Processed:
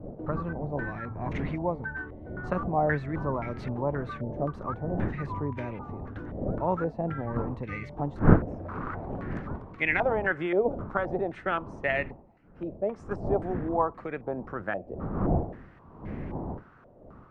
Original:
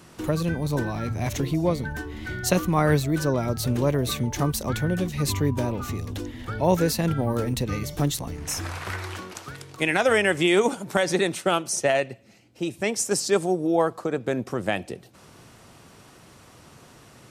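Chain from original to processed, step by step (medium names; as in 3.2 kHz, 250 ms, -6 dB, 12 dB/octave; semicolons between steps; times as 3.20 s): wind noise 240 Hz -25 dBFS; step-sequenced low-pass 3.8 Hz 610–2100 Hz; trim -9.5 dB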